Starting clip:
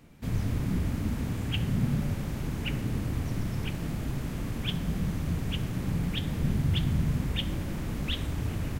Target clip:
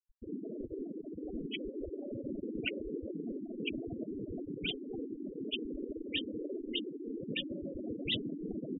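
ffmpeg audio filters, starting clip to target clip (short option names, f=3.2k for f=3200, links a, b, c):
-filter_complex "[0:a]asoftclip=type=tanh:threshold=-23dB,asettb=1/sr,asplit=3[a][b][c];[a]atrim=end=7.214[d];[b]atrim=start=7.21:end=7.79,asetpts=PTS-STARTPTS,afade=t=in:d=0.004:c=qsin,afade=t=out:st=0.576:d=0.004:c=qsin,acrossover=split=220[e][f];[f]acompressor=threshold=-33dB:ratio=4[g];[e][g]amix=inputs=2:normalize=0[h];[c]atrim=start=7.786[i];[d][h]acrossfade=d=0.004:c1=hsin:c2=qsin[j];[j][i]acrossfade=d=0.004:c1=qsin:c2=hsin,afftfilt=real='re*lt(hypot(re,im),0.0891)':imag='im*lt(hypot(re,im),0.0891)':win_size=1024:overlap=0.75,asplit=2[k][l];[l]aecho=0:1:327|654:0.15|0.0299[m];[k][m]amix=inputs=2:normalize=0,afftfilt=real='re*gte(hypot(re,im),0.0282)':imag='im*gte(hypot(re,im),0.0282)':win_size=1024:overlap=0.75,volume=6dB"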